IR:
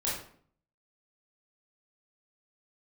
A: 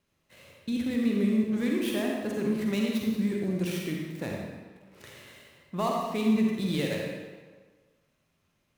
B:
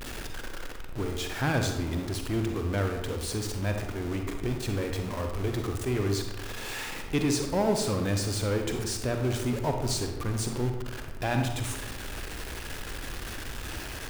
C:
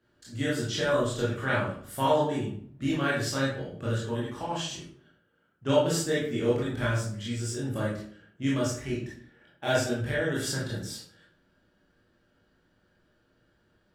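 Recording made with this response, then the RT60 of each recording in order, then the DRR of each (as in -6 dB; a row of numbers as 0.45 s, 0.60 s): C; 1.5 s, 1.0 s, 0.55 s; -1.5 dB, 3.5 dB, -7.0 dB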